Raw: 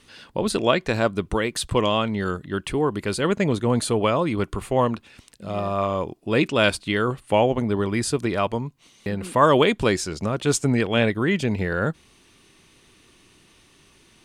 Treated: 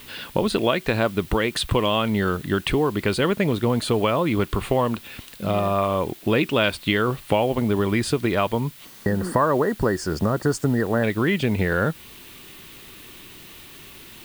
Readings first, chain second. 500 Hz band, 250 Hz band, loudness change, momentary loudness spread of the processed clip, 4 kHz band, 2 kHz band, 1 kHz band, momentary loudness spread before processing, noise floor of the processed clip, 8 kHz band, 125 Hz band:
0.0 dB, +1.0 dB, 0.0 dB, 20 LU, +0.5 dB, +0.5 dB, -0.5 dB, 9 LU, -45 dBFS, -4.5 dB, +1.5 dB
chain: compression 4:1, threshold -28 dBFS, peak gain reduction 14 dB; spectral selection erased 8.85–11.03 s, 2–4.3 kHz; added noise blue -49 dBFS; resonant high shelf 4.6 kHz -6.5 dB, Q 1.5; trim +9 dB

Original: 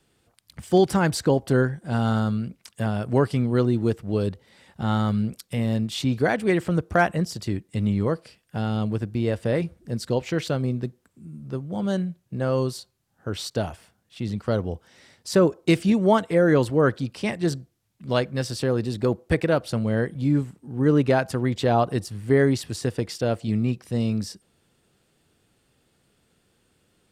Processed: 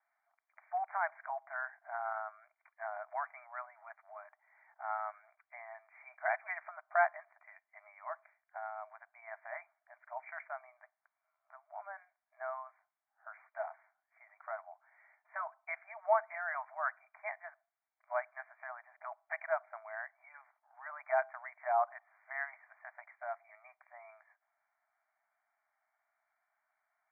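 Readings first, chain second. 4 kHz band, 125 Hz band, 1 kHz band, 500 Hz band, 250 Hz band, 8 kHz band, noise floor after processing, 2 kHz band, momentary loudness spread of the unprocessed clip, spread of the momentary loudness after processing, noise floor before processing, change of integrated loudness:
under -40 dB, under -40 dB, -7.5 dB, -17.5 dB, under -40 dB, under -40 dB, under -85 dBFS, -8.5 dB, 11 LU, 21 LU, -68 dBFS, -15.5 dB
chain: brick-wall FIR band-pass 610–2400 Hz; distance through air 220 m; trim -6.5 dB

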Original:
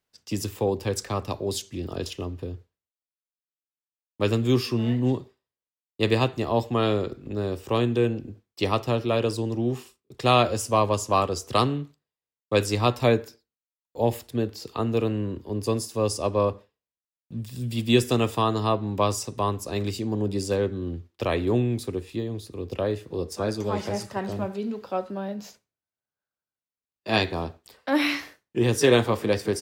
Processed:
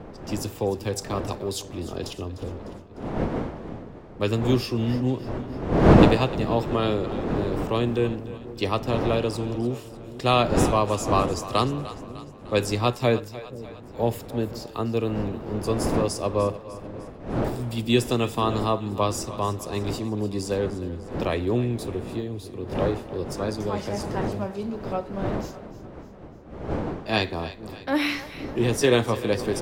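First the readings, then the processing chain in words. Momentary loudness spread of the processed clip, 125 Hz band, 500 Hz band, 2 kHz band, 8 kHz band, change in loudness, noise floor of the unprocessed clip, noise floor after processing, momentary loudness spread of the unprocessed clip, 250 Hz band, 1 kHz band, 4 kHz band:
15 LU, +1.5 dB, +0.5 dB, 0.0 dB, -1.0 dB, +0.5 dB, under -85 dBFS, -42 dBFS, 11 LU, +2.0 dB, +0.5 dB, -0.5 dB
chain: wind noise 450 Hz -29 dBFS; two-band feedback delay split 460 Hz, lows 485 ms, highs 301 ms, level -15 dB; trim -1 dB

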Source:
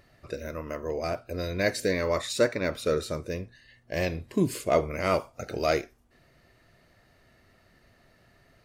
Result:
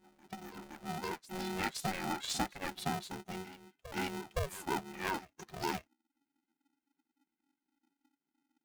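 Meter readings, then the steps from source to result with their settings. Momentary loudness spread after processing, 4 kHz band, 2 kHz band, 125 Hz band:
12 LU, -5.0 dB, -8.0 dB, -10.5 dB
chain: expander on every frequency bin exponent 2; compression 5:1, threshold -34 dBFS, peak gain reduction 13.5 dB; reverse echo 517 ms -15.5 dB; polarity switched at an audio rate 280 Hz; trim +1 dB

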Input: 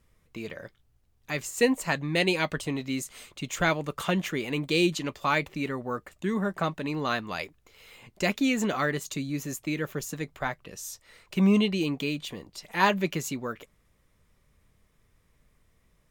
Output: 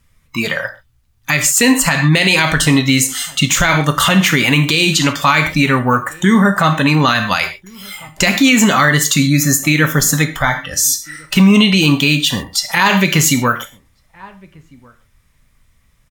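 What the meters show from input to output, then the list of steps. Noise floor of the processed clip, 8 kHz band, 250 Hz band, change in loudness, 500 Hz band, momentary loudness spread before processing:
-56 dBFS, +23.0 dB, +15.0 dB, +16.0 dB, +9.0 dB, 15 LU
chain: spectral noise reduction 16 dB; peaking EQ 430 Hz -11 dB 1.8 oct; in parallel at +2.5 dB: compression, threshold -38 dBFS, peak gain reduction 16.5 dB; on the sum: echo from a far wall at 240 m, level -28 dB; gated-style reverb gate 160 ms falling, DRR 6.5 dB; loudness maximiser +20 dB; trim -1 dB

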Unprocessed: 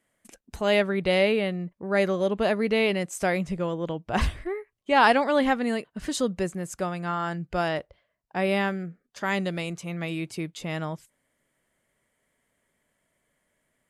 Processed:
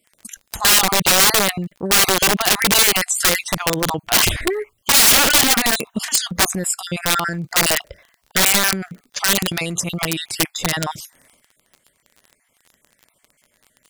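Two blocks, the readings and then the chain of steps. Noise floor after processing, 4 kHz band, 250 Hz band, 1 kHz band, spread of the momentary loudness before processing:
-66 dBFS, +18.0 dB, +2.0 dB, +5.0 dB, 12 LU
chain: random holes in the spectrogram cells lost 37%; transient shaper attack +7 dB, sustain +11 dB; integer overflow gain 18.5 dB; treble shelf 2.8 kHz +8.5 dB; crackle 25 per s -39 dBFS; trim +6 dB

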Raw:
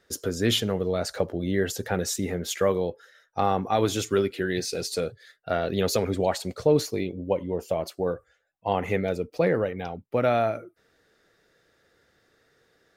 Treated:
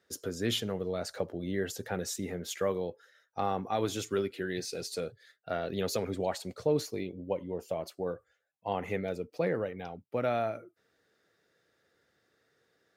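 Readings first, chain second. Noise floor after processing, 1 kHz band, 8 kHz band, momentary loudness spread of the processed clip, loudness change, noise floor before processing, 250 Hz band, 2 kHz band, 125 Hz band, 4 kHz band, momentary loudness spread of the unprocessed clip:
-75 dBFS, -7.5 dB, -7.5 dB, 7 LU, -7.5 dB, -68 dBFS, -7.5 dB, -7.5 dB, -8.5 dB, -7.5 dB, 7 LU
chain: high-pass 86 Hz; trim -7.5 dB

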